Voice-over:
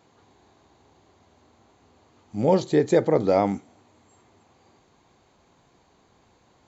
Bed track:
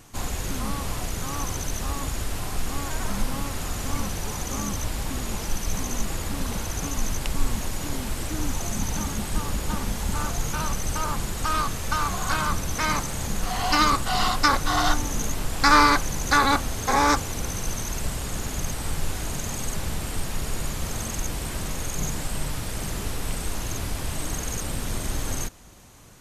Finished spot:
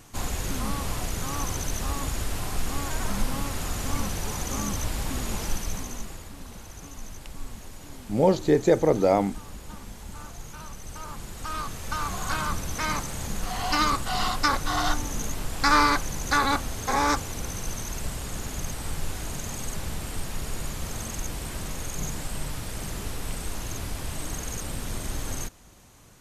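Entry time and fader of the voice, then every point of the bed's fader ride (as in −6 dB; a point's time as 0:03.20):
5.75 s, −0.5 dB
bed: 0:05.49 −0.5 dB
0:06.33 −13.5 dB
0:10.72 −13.5 dB
0:12.18 −3.5 dB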